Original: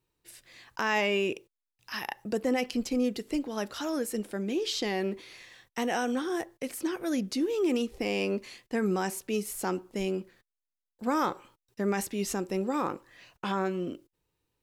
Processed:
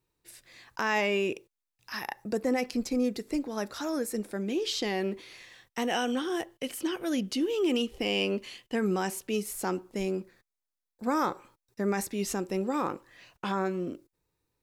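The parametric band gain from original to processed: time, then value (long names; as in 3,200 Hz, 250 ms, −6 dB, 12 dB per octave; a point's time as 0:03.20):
parametric band 3,000 Hz 0.2 octaves
−4 dB
from 0:01.92 −11 dB
from 0:04.36 +1 dB
from 0:05.91 +11.5 dB
from 0:08.75 +3.5 dB
from 0:09.42 −2.5 dB
from 0:10.04 −11.5 dB
from 0:12.13 −0.5 dB
from 0:13.49 −11 dB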